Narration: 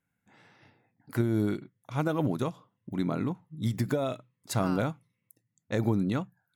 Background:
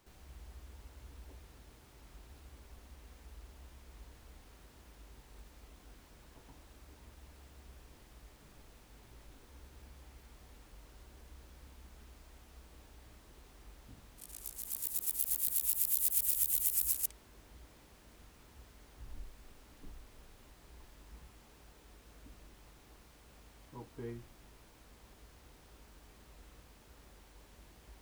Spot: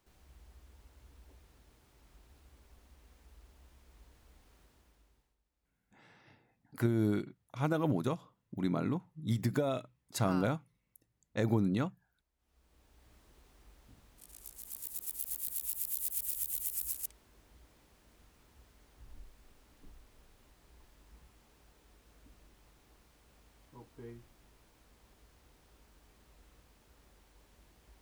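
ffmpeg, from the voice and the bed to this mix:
ffmpeg -i stem1.wav -i stem2.wav -filter_complex "[0:a]adelay=5650,volume=-3dB[link_01];[1:a]volume=17.5dB,afade=type=out:start_time=4.59:duration=0.78:silence=0.0749894,afade=type=in:start_time=12.37:duration=0.8:silence=0.0668344[link_02];[link_01][link_02]amix=inputs=2:normalize=0" out.wav

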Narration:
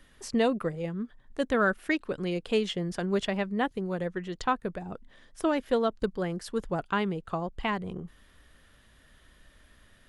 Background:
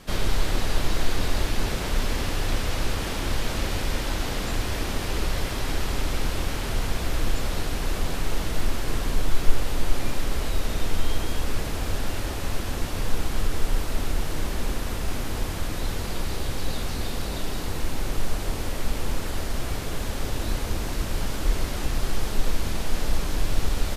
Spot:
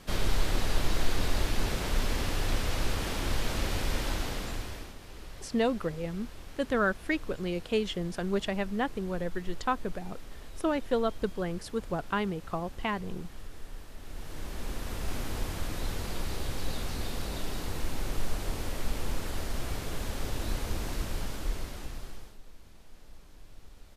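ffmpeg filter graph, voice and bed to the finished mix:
ffmpeg -i stem1.wav -i stem2.wav -filter_complex "[0:a]adelay=5200,volume=-2dB[link_01];[1:a]volume=10dB,afade=type=out:start_time=4.08:duration=0.87:silence=0.16788,afade=type=in:start_time=14:duration=1.16:silence=0.199526,afade=type=out:start_time=20.94:duration=1.44:silence=0.0794328[link_02];[link_01][link_02]amix=inputs=2:normalize=0" out.wav

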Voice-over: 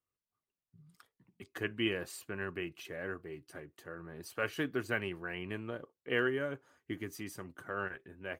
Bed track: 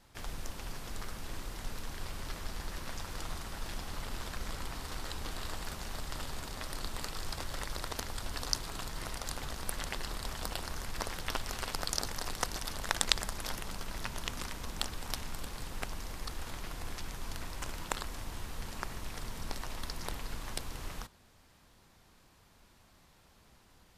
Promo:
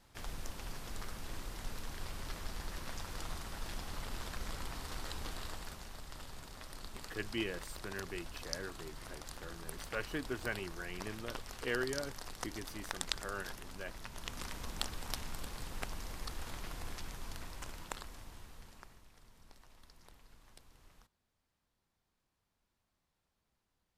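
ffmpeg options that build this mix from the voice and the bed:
ffmpeg -i stem1.wav -i stem2.wav -filter_complex "[0:a]adelay=5550,volume=-4.5dB[link_01];[1:a]volume=4dB,afade=type=out:start_time=5.23:duration=0.7:silence=0.473151,afade=type=in:start_time=14.08:duration=0.47:silence=0.473151,afade=type=out:start_time=16.74:duration=2.33:silence=0.11885[link_02];[link_01][link_02]amix=inputs=2:normalize=0" out.wav

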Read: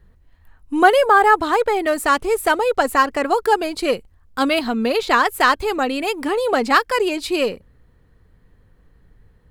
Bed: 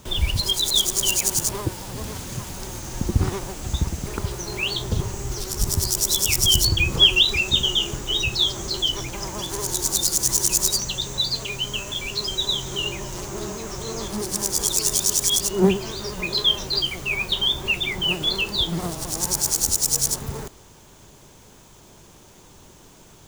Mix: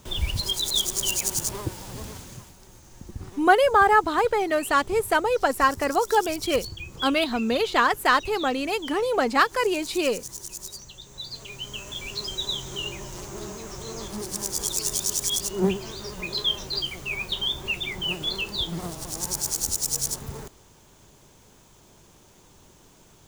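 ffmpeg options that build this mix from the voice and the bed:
ffmpeg -i stem1.wav -i stem2.wav -filter_complex "[0:a]adelay=2650,volume=-4.5dB[link_01];[1:a]volume=7.5dB,afade=type=out:start_time=1.96:duration=0.6:silence=0.223872,afade=type=in:start_time=11.05:duration=1.04:silence=0.251189[link_02];[link_01][link_02]amix=inputs=2:normalize=0" out.wav

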